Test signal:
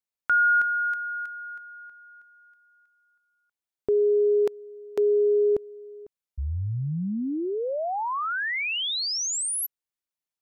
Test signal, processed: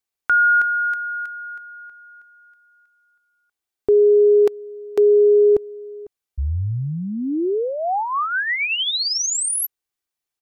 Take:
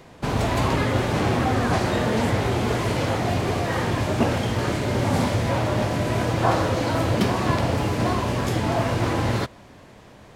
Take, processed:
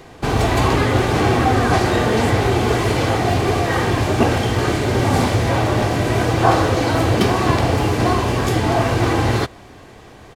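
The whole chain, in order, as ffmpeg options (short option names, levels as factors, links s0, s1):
-af "aecho=1:1:2.6:0.34,volume=1.88"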